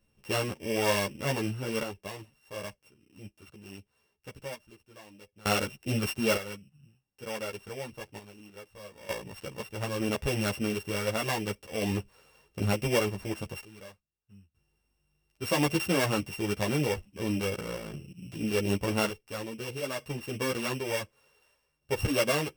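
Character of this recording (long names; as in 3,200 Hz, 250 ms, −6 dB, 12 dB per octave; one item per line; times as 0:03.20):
a buzz of ramps at a fixed pitch in blocks of 16 samples
sample-and-hold tremolo 1.1 Hz, depth 95%
a shimmering, thickened sound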